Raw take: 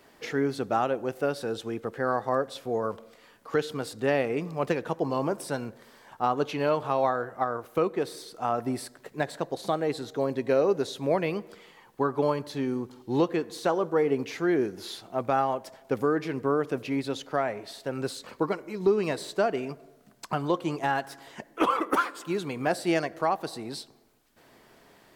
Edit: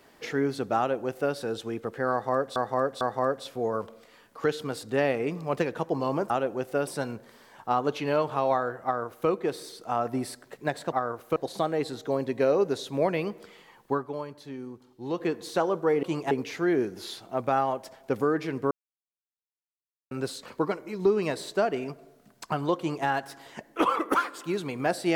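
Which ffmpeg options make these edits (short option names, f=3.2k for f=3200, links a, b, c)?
-filter_complex "[0:a]asplit=13[a][b][c][d][e][f][g][h][i][j][k][l][m];[a]atrim=end=2.562[n];[b]atrim=start=2.108:end=2.562[o];[c]atrim=start=2.108:end=5.402[p];[d]atrim=start=0.778:end=1.352[q];[e]atrim=start=5.398:end=9.452[r];[f]atrim=start=7.368:end=7.812[s];[g]atrim=start=9.448:end=12.16,asetpts=PTS-STARTPTS,afade=t=out:st=2.562:d=0.15:silence=0.334965[t];[h]atrim=start=12.16:end=13.19,asetpts=PTS-STARTPTS,volume=-9.5dB[u];[i]atrim=start=13.19:end=14.122,asetpts=PTS-STARTPTS,afade=t=in:d=0.15:silence=0.334965[v];[j]atrim=start=20.588:end=20.872[w];[k]atrim=start=14.118:end=16.52,asetpts=PTS-STARTPTS,afade=t=out:st=2.398:d=0.004:c=hsin[x];[l]atrim=start=16.52:end=17.92,asetpts=PTS-STARTPTS,volume=0[y];[m]atrim=start=17.92,asetpts=PTS-STARTPTS,afade=t=in:d=0.004:c=hsin[z];[n][o]acrossfade=d=0.004:c1=hsin:c2=hsin[aa];[aa][p]acrossfade=d=0.004:c1=hsin:c2=hsin[ab];[ab][q]acrossfade=d=0.004:c1=hsin:c2=hsin[ac];[ac][r]acrossfade=d=0.004:c1=hsin:c2=hsin[ad];[ad][s]acrossfade=d=0.004:c1=hsin:c2=hsin[ae];[t][u][v]concat=n=3:v=0:a=1[af];[ae][af]acrossfade=d=0.004:c1=hsin:c2=hsin[ag];[ag][w]acrossfade=d=0.004:c1=hsin:c2=hsin[ah];[x][y][z]concat=n=3:v=0:a=1[ai];[ah][ai]acrossfade=d=0.004:c1=hsin:c2=hsin"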